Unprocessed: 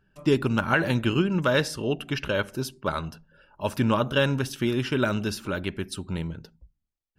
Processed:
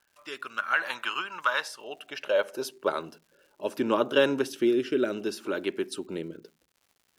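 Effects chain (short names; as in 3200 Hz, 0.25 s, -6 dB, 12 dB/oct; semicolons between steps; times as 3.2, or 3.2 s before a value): high-pass sweep 1100 Hz -> 350 Hz, 1.49–3.06; rotary speaker horn 0.65 Hz; crackle 220/s -50 dBFS; gain -1.5 dB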